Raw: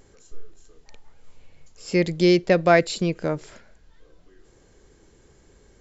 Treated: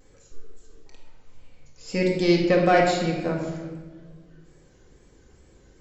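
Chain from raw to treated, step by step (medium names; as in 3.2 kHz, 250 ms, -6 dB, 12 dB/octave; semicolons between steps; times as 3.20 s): single-diode clipper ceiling -8.5 dBFS; wow and flutter 86 cents; simulated room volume 1100 m³, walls mixed, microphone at 2 m; trim -4.5 dB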